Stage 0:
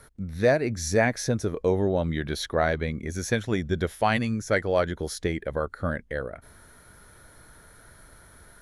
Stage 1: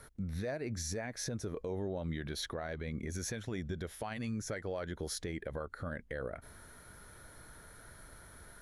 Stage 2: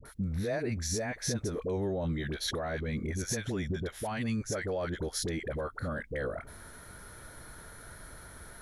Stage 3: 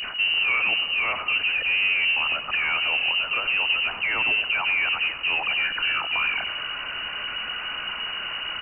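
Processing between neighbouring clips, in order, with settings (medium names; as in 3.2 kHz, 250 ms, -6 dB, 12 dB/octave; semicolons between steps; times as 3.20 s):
compression 6:1, threshold -29 dBFS, peak gain reduction 12.5 dB; peak limiter -26.5 dBFS, peak gain reduction 8.5 dB; trim -2.5 dB
phase dispersion highs, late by 54 ms, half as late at 710 Hz; trim +5.5 dB
jump at every zero crossing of -33.5 dBFS; on a send: feedback delay 92 ms, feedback 54%, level -13 dB; on the sum: frequency inversion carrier 2.9 kHz; trim +6.5 dB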